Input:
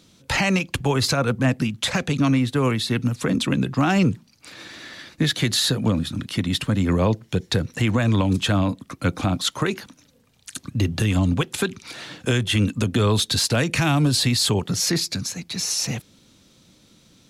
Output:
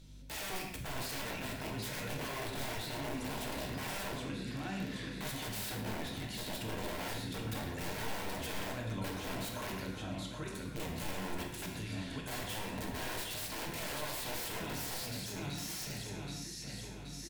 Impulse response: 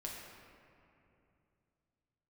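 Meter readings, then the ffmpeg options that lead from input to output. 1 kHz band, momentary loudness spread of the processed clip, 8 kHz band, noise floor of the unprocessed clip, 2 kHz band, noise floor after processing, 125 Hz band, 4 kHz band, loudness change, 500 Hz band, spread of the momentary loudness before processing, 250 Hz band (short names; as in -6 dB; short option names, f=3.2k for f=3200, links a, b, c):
-13.0 dB, 3 LU, -15.0 dB, -57 dBFS, -14.0 dB, -45 dBFS, -20.5 dB, -17.0 dB, -17.5 dB, -16.0 dB, 9 LU, -19.5 dB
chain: -filter_complex "[0:a]aecho=1:1:775|1550|2325|3100|3875|4650:0.355|0.181|0.0923|0.0471|0.024|0.0122,aeval=exprs='(mod(7.5*val(0)+1,2)-1)/7.5':c=same,aemphasis=mode=production:type=cd,bandreject=f=1.2k:w=8.4,aeval=exprs='val(0)+0.00794*(sin(2*PI*50*n/s)+sin(2*PI*2*50*n/s)/2+sin(2*PI*3*50*n/s)/3+sin(2*PI*4*50*n/s)/4+sin(2*PI*5*50*n/s)/5)':c=same,asoftclip=type=hard:threshold=-15dB,alimiter=limit=-23.5dB:level=0:latency=1:release=20,bass=f=250:g=-2,treble=f=4k:g=-6[a];[1:a]atrim=start_sample=2205,afade=t=out:st=0.23:d=0.01,atrim=end_sample=10584[b];[a][b]afir=irnorm=-1:irlink=0,volume=-5.5dB"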